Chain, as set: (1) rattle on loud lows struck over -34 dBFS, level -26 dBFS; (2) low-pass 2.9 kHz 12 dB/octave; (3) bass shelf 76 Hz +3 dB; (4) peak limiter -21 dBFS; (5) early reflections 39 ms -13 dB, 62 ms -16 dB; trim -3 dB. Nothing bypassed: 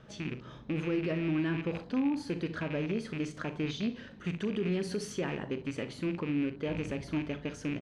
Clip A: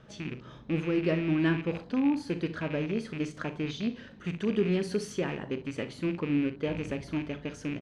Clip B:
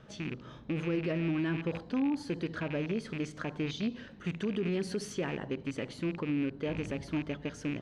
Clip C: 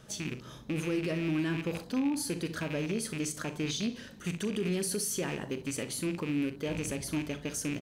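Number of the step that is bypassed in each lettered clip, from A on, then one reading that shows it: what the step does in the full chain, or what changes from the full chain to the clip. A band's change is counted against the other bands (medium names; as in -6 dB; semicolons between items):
4, crest factor change +3.5 dB; 5, echo-to-direct -11.0 dB to none; 2, 8 kHz band +15.0 dB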